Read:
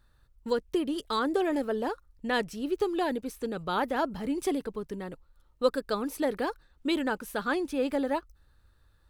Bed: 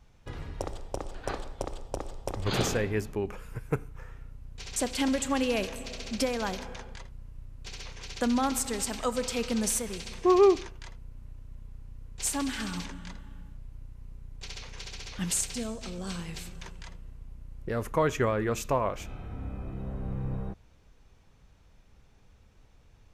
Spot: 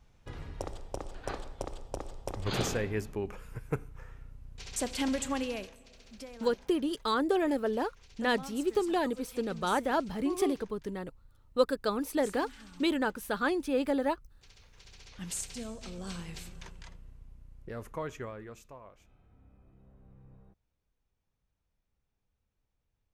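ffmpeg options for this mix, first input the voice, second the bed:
ffmpeg -i stem1.wav -i stem2.wav -filter_complex "[0:a]adelay=5950,volume=-0.5dB[link_01];[1:a]volume=10dB,afade=type=out:start_time=5.26:duration=0.51:silence=0.199526,afade=type=in:start_time=14.68:duration=1.3:silence=0.211349,afade=type=out:start_time=16.64:duration=2.08:silence=0.112202[link_02];[link_01][link_02]amix=inputs=2:normalize=0" out.wav

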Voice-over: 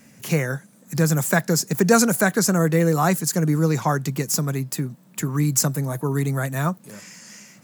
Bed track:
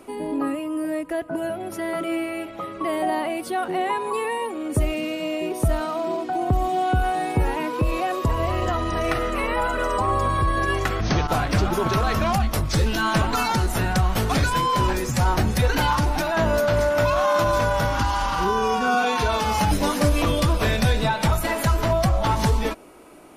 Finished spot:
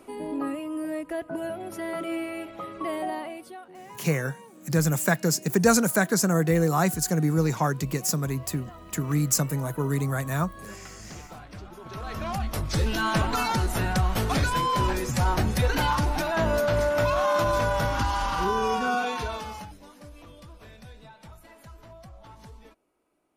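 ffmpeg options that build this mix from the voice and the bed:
ffmpeg -i stem1.wav -i stem2.wav -filter_complex "[0:a]adelay=3750,volume=-3.5dB[link_01];[1:a]volume=13dB,afade=type=out:start_time=2.86:duration=0.79:silence=0.149624,afade=type=in:start_time=11.83:duration=1.09:silence=0.125893,afade=type=out:start_time=18.73:duration=1:silence=0.0668344[link_02];[link_01][link_02]amix=inputs=2:normalize=0" out.wav

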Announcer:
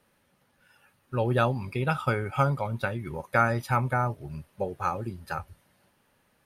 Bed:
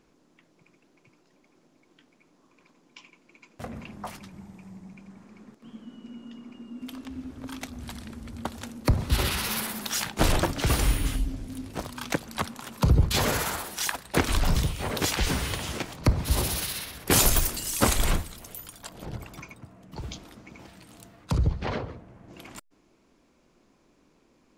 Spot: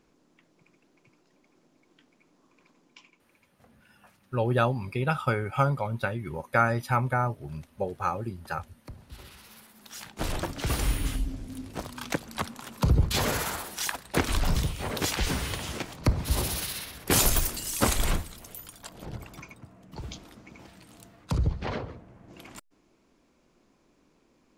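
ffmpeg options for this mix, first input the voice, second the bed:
ffmpeg -i stem1.wav -i stem2.wav -filter_complex "[0:a]adelay=3200,volume=0dB[link_01];[1:a]volume=18dB,afade=type=out:start_time=2.8:duration=0.77:silence=0.1,afade=type=in:start_time=9.73:duration=1.35:silence=0.1[link_02];[link_01][link_02]amix=inputs=2:normalize=0" out.wav

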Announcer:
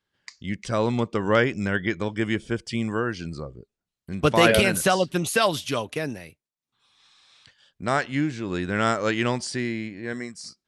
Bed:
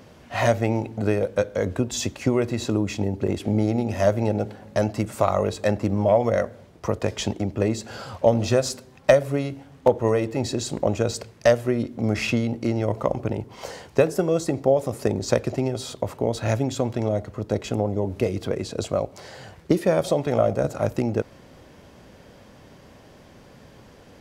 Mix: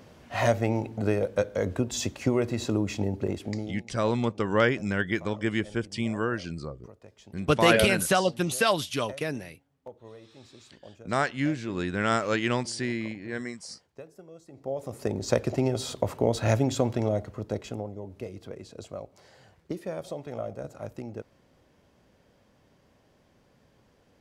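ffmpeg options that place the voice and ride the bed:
ffmpeg -i stem1.wav -i stem2.wav -filter_complex "[0:a]adelay=3250,volume=-2.5dB[link_01];[1:a]volume=22.5dB,afade=type=out:start_time=3.14:duration=0.68:silence=0.0707946,afade=type=in:start_time=14.5:duration=1.21:silence=0.0501187,afade=type=out:start_time=16.76:duration=1.19:silence=0.199526[link_02];[link_01][link_02]amix=inputs=2:normalize=0" out.wav

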